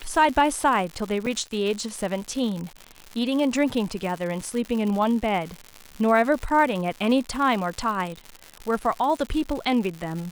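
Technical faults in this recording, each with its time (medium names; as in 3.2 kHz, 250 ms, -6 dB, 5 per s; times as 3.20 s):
crackle 170 per s -29 dBFS
1.26–1.27 s: dropout 5.1 ms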